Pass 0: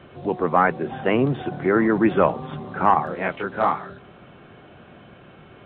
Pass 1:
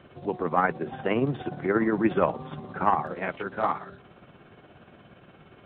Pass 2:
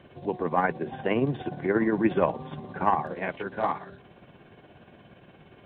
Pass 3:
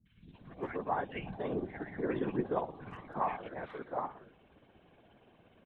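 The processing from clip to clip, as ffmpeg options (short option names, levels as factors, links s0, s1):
-af "tremolo=f=17:d=0.46,volume=0.668"
-af "bandreject=f=1300:w=5.4"
-filter_complex "[0:a]acrossover=split=160|1700[s0][s1][s2];[s2]adelay=60[s3];[s1]adelay=340[s4];[s0][s4][s3]amix=inputs=3:normalize=0,afftfilt=real='hypot(re,im)*cos(2*PI*random(0))':imag='hypot(re,im)*sin(2*PI*random(1))':win_size=512:overlap=0.75,volume=0.708"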